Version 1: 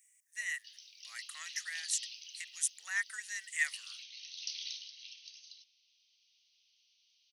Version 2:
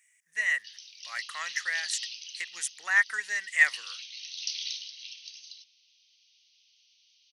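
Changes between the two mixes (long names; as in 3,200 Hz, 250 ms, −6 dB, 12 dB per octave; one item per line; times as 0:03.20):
speech: remove first difference
background +7.0 dB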